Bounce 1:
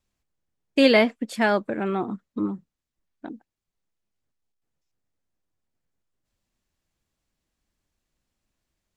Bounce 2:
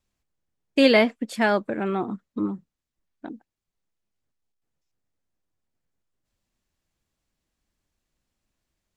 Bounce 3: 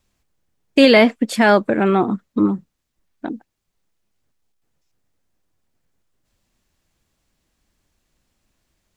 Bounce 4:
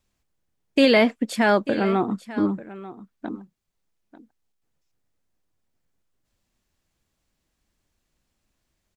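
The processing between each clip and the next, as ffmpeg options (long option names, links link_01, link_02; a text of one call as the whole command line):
ffmpeg -i in.wav -af anull out.wav
ffmpeg -i in.wav -af "alimiter=level_in=11dB:limit=-1dB:release=50:level=0:latency=1,volume=-1dB" out.wav
ffmpeg -i in.wav -af "aecho=1:1:892:0.15,volume=-5.5dB" out.wav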